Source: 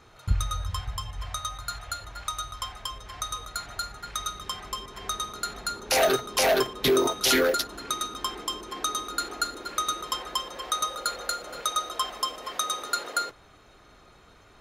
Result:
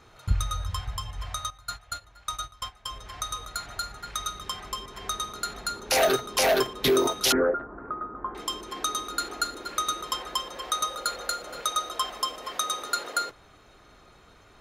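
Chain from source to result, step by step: 1.5–2.91 gate -34 dBFS, range -13 dB; 7.32–8.35 steep low-pass 1500 Hz 36 dB/oct

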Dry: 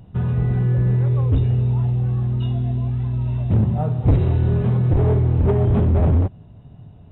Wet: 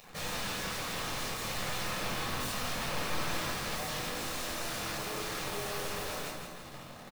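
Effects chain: HPF 570 Hz 12 dB/oct; bell 1500 Hz -12 dB 0.36 oct; notch 2000 Hz, Q 20; in parallel at +1.5 dB: limiter -28.5 dBFS, peak gain reduction 11.5 dB; on the sum: soft clip -31 dBFS, distortion -8 dB; requantised 8-bit, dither none; wrapped overs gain 38.5 dB; on a send: feedback echo 0.166 s, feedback 53%, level -7.5 dB; on the sum: shoebox room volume 720 m³, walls furnished, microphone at 6 m; gain -1 dB

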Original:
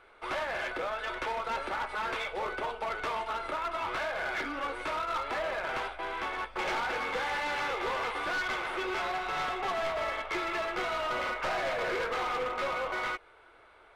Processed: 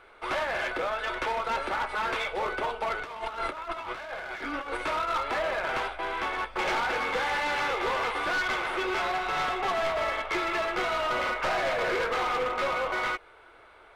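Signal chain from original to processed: 3.02–4.77 negative-ratio compressor -38 dBFS, ratio -0.5; gain +4 dB

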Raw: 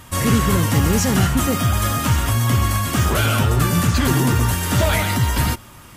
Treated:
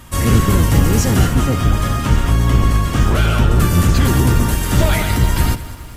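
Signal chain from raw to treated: octaver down 1 oct, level +3 dB; 1.37–3.56 high shelf 7700 Hz -11 dB; lo-fi delay 0.203 s, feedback 55%, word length 7-bit, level -15 dB

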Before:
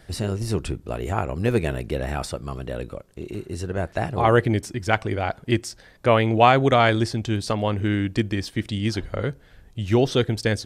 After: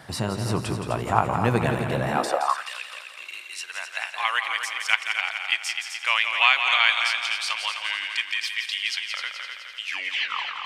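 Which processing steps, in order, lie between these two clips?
tape stop at the end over 0.84 s; tone controls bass -5 dB, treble -2 dB; multi-head echo 85 ms, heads second and third, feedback 51%, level -8 dB; on a send at -19 dB: reverb RT60 1.9 s, pre-delay 3 ms; on the sum: high-pass sweep 120 Hz -> 2500 Hz, 2.05–2.69; in parallel at 0 dB: compressor, threshold -38 dBFS, peak gain reduction 21 dB; on the sum: fifteen-band EQ 100 Hz -6 dB, 400 Hz -7 dB, 1000 Hz +10 dB

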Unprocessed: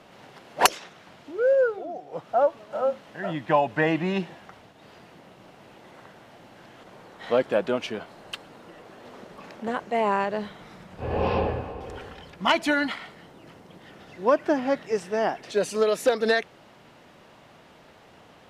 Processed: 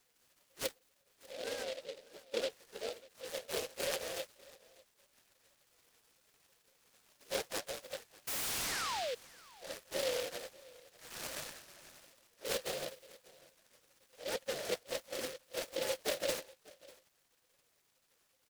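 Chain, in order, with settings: octaver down 1 oct, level +1 dB; steep high-pass 190 Hz 48 dB/oct; spectral gate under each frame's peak -20 dB weak; bell 2000 Hz -12 dB 0.9 oct; in parallel at -8.5 dB: Schmitt trigger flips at -39.5 dBFS; on the sum: vowel filter e; painted sound fall, 8.27–9.15, 460–8300 Hz -53 dBFS; on a send: echo 0.595 s -22 dB; on the sum: noise-modulated delay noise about 3100 Hz, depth 0.12 ms; gain +16 dB

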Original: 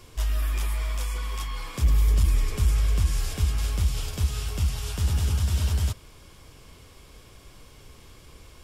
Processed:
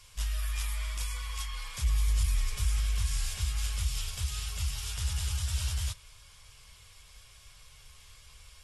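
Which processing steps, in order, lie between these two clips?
passive tone stack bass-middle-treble 10-0-10; AAC 32 kbps 32000 Hz

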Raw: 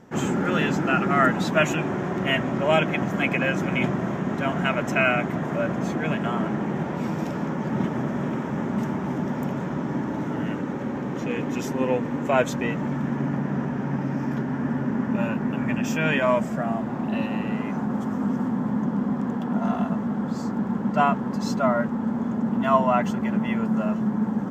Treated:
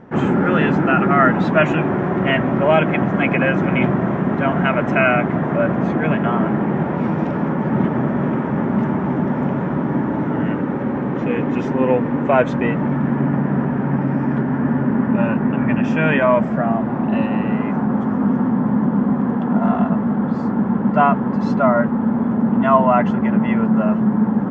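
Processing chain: LPF 2100 Hz 12 dB/oct; in parallel at -3 dB: limiter -14.5 dBFS, peak gain reduction 8 dB; on the sum: gain +3 dB

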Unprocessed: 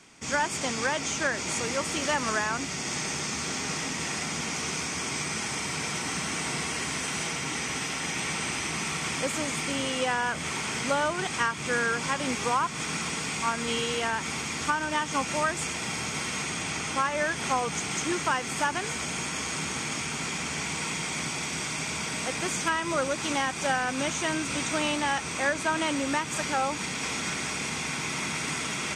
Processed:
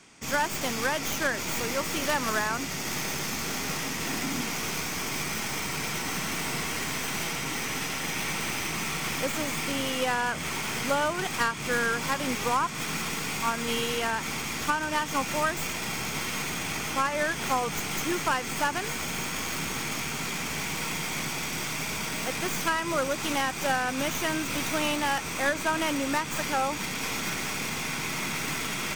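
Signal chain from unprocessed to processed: tracing distortion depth 0.083 ms; 4.05–4.45 bell 270 Hz +11.5 dB 0.35 oct

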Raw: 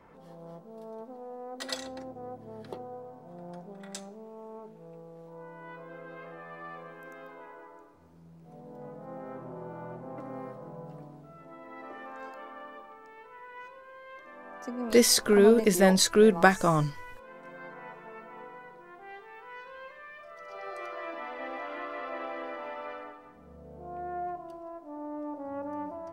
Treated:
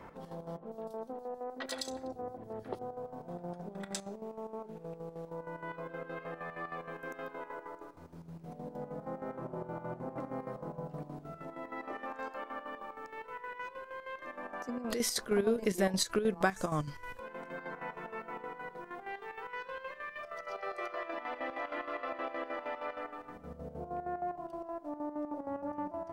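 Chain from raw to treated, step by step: compressor 2:1, threshold -46 dBFS, peak gain reduction 17.5 dB; chopper 6.4 Hz, depth 65%, duty 60%; 0.57–2.79 three bands offset in time mids, lows, highs 30/90 ms, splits 150/3300 Hz; gain +7 dB

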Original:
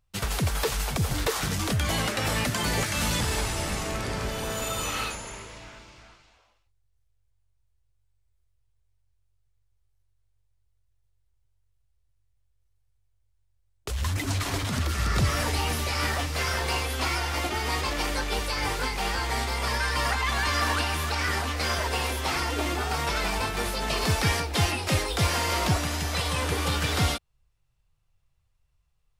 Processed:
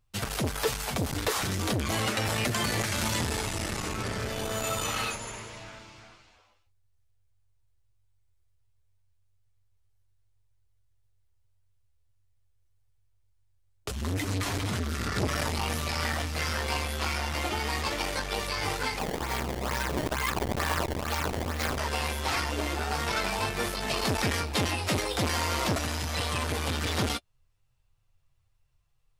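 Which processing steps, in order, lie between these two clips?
flange 0.38 Hz, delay 8.5 ms, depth 1.4 ms, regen -23%; 18.99–21.78 decimation with a swept rate 20×, swing 160% 2.2 Hz; core saturation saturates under 780 Hz; gain +4 dB

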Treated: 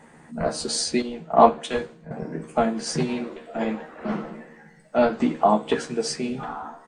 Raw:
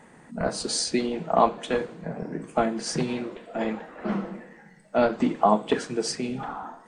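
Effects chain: doubler 13 ms -4.5 dB; 1.02–2.11 three-band expander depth 100%

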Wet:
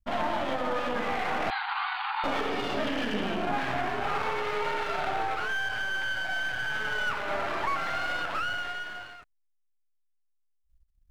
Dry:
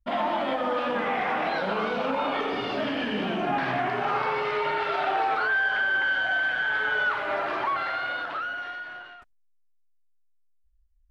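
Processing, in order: half-wave gain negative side -12 dB; 1.5–2.24 brick-wall FIR band-pass 730–4800 Hz; vocal rider within 4 dB 0.5 s

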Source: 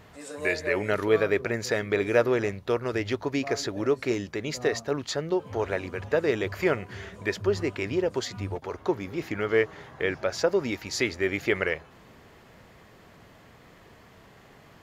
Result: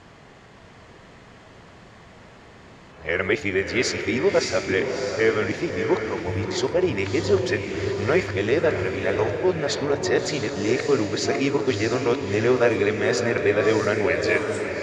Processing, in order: whole clip reversed; LPF 8300 Hz 24 dB/oct; in parallel at -2 dB: limiter -17 dBFS, peak gain reduction 9 dB; on the sum: de-hum 146.2 Hz, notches 40; on a send: diffused feedback echo 0.64 s, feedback 44%, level -5.5 dB

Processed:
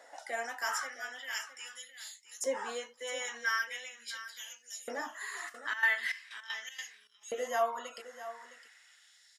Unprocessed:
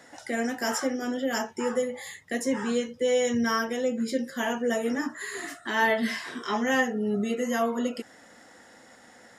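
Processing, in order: LFO high-pass saw up 0.41 Hz 580–6300 Hz; echo 0.661 s -13.5 dB; 5.48–7.21 step gate ".xxx..x.xx" 157 bpm -12 dB; gain -6.5 dB

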